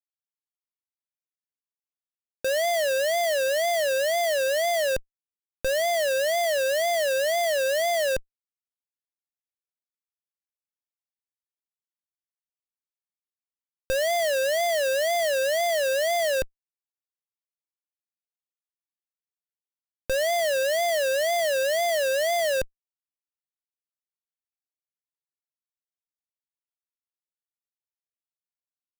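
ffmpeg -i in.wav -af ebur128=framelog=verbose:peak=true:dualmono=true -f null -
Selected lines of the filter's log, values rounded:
Integrated loudness:
  I:         -21.0 LUFS
  Threshold: -31.1 LUFS
Loudness range:
  LRA:         8.0 LU
  Threshold: -43.3 LUFS
  LRA low:   -29.2 LUFS
  LRA high:  -21.2 LUFS
True peak:
  Peak:      -16.6 dBFS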